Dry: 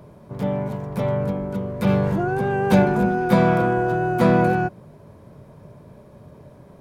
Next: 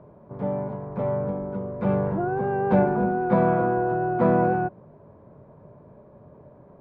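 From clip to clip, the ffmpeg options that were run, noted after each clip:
ffmpeg -i in.wav -af "lowpass=1100,lowshelf=frequency=270:gain=-7.5" out.wav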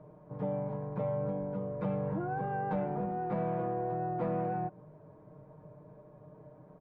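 ffmpeg -i in.wav -af "asoftclip=type=tanh:threshold=-11.5dB,acompressor=threshold=-25dB:ratio=6,aecho=1:1:6.5:0.8,volume=-7dB" out.wav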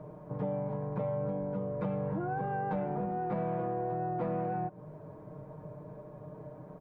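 ffmpeg -i in.wav -af "acompressor=threshold=-43dB:ratio=2,volume=7dB" out.wav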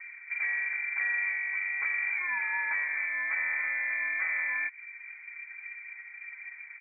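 ffmpeg -i in.wav -af "equalizer=frequency=100:width_type=o:width=0.67:gain=9,equalizer=frequency=630:width_type=o:width=0.67:gain=4,equalizer=frequency=1600:width_type=o:width=0.67:gain=11,adynamicsmooth=sensitivity=1.5:basefreq=780,lowpass=frequency=2100:width_type=q:width=0.5098,lowpass=frequency=2100:width_type=q:width=0.6013,lowpass=frequency=2100:width_type=q:width=0.9,lowpass=frequency=2100:width_type=q:width=2.563,afreqshift=-2500" out.wav

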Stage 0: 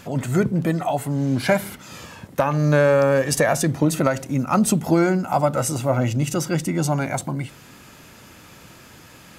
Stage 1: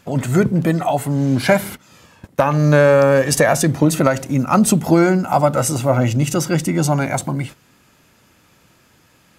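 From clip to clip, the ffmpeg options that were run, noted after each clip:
ffmpeg -i in.wav -af "agate=range=-13dB:threshold=-35dB:ratio=16:detection=peak,volume=4.5dB" out.wav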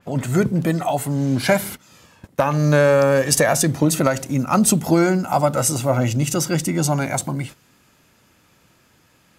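ffmpeg -i in.wav -af "adynamicequalizer=threshold=0.0251:dfrequency=3400:dqfactor=0.7:tfrequency=3400:tqfactor=0.7:attack=5:release=100:ratio=0.375:range=2.5:mode=boostabove:tftype=highshelf,volume=-3dB" out.wav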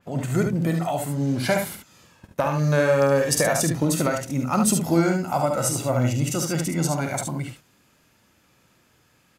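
ffmpeg -i in.wav -af "aecho=1:1:48|72:0.335|0.531,volume=-5.5dB" out.wav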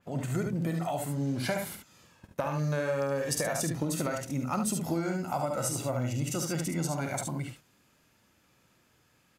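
ffmpeg -i in.wav -af "acompressor=threshold=-21dB:ratio=6,volume=-5.5dB" out.wav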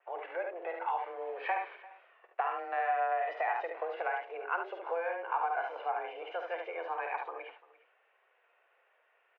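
ffmpeg -i in.wav -af "highpass=frequency=340:width_type=q:width=0.5412,highpass=frequency=340:width_type=q:width=1.307,lowpass=frequency=2500:width_type=q:width=0.5176,lowpass=frequency=2500:width_type=q:width=0.7071,lowpass=frequency=2500:width_type=q:width=1.932,afreqshift=170,aecho=1:1:344:0.0944" out.wav

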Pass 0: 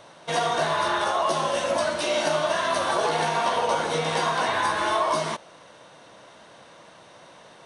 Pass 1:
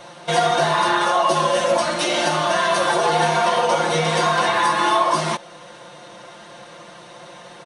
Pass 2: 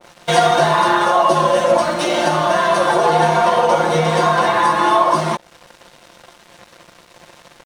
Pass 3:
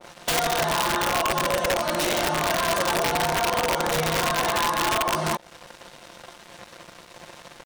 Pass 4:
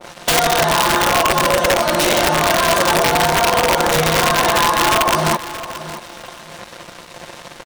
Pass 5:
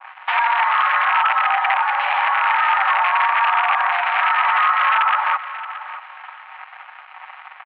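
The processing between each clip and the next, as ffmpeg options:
ffmpeg -i in.wav -filter_complex "[0:a]aecho=1:1:5.7:1,asplit=2[link_01][link_02];[link_02]alimiter=limit=-19dB:level=0:latency=1:release=356,volume=-1.5dB[link_03];[link_01][link_03]amix=inputs=2:normalize=0" out.wav
ffmpeg -i in.wav -af "aeval=exprs='sgn(val(0))*max(abs(val(0))-0.0106,0)':channel_layout=same,adynamicequalizer=threshold=0.0251:dfrequency=1600:dqfactor=0.7:tfrequency=1600:tqfactor=0.7:attack=5:release=100:ratio=0.375:range=3.5:mode=cutabove:tftype=highshelf,volume=5.5dB" out.wav
ffmpeg -i in.wav -af "acompressor=threshold=-20dB:ratio=8,aeval=exprs='(mod(6.31*val(0)+1,2)-1)/6.31':channel_layout=same" out.wav
ffmpeg -i in.wav -af "aecho=1:1:625|1250|1875:0.2|0.0479|0.0115,volume=8.5dB" out.wav
ffmpeg -i in.wav -af "highpass=frequency=580:width_type=q:width=0.5412,highpass=frequency=580:width_type=q:width=1.307,lowpass=frequency=2400:width_type=q:width=0.5176,lowpass=frequency=2400:width_type=q:width=0.7071,lowpass=frequency=2400:width_type=q:width=1.932,afreqshift=230" out.wav

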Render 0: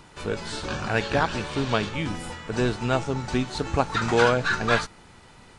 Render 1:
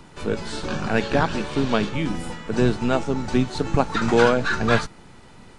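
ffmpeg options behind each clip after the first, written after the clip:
ffmpeg -i in.wav -filter_complex "[0:a]lowshelf=frequency=400:gain=8,acrossover=split=130[link_01][link_02];[link_01]aeval=exprs='abs(val(0))':channel_layout=same[link_03];[link_03][link_02]amix=inputs=2:normalize=0" out.wav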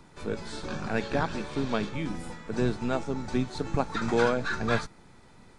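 ffmpeg -i in.wav -af "bandreject=frequency=2900:width=9.9,volume=-7.5dB" out.wav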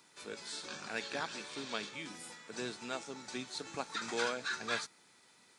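ffmpeg -i in.wav -af "highpass=480,equalizer=frequency=700:width=0.37:gain=-14,volume=3dB" out.wav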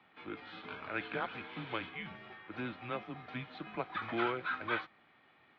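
ffmpeg -i in.wav -af "highpass=170,highpass=frequency=250:width_type=q:width=0.5412,highpass=frequency=250:width_type=q:width=1.307,lowpass=frequency=3100:width_type=q:width=0.5176,lowpass=frequency=3100:width_type=q:width=0.7071,lowpass=frequency=3100:width_type=q:width=1.932,afreqshift=-120,volume=2dB" out.wav

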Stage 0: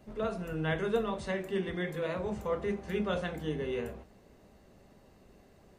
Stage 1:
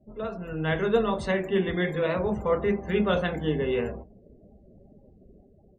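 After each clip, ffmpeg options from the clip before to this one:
ffmpeg -i in.wav -af "afftdn=noise_reduction=34:noise_floor=-53,dynaudnorm=framelen=290:gausssize=5:maxgain=8dB" out.wav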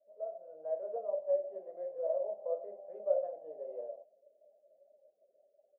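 ffmpeg -i in.wav -af "asuperpass=centerf=600:order=4:qfactor=5.3" out.wav

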